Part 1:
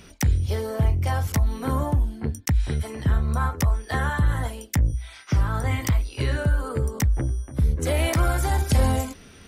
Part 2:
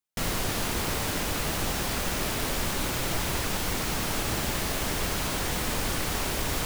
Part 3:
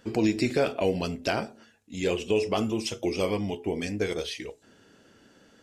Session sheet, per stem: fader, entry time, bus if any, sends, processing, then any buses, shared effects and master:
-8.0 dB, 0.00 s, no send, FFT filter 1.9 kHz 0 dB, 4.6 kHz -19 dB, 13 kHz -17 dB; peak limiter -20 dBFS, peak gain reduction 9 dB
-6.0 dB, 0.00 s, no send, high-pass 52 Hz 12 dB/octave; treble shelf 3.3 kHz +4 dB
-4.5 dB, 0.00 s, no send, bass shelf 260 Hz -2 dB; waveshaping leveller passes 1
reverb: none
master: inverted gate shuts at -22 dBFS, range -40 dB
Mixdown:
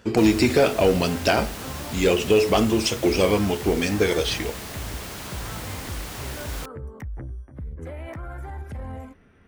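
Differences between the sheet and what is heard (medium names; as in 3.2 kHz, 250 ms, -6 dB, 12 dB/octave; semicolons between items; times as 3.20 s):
stem 2: missing treble shelf 3.3 kHz +4 dB; stem 3 -4.5 dB -> +5.0 dB; master: missing inverted gate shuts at -22 dBFS, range -40 dB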